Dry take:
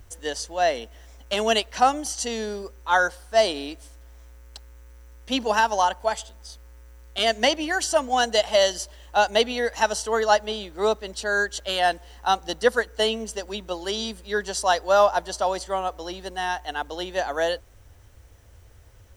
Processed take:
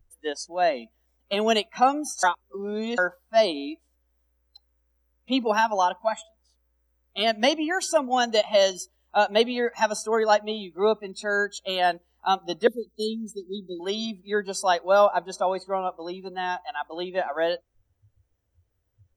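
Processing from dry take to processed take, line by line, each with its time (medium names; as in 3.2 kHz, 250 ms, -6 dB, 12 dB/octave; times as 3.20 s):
2.23–2.98 s: reverse
12.67–13.80 s: elliptic band-stop 400–3800 Hz
whole clip: spectral noise reduction 23 dB; peaking EQ 240 Hz +5.5 dB 2.2 oct; trim -2.5 dB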